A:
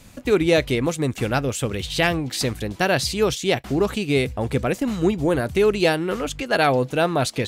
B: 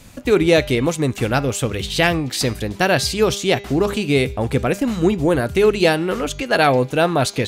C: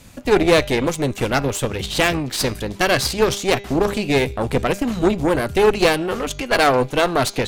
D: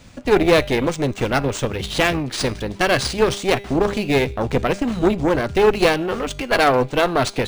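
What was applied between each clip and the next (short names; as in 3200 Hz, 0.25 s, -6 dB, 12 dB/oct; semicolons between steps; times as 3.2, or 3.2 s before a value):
de-hum 201 Hz, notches 35; gain +3.5 dB
added harmonics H 6 -15 dB, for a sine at -2 dBFS; gain -1 dB
decimation joined by straight lines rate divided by 3×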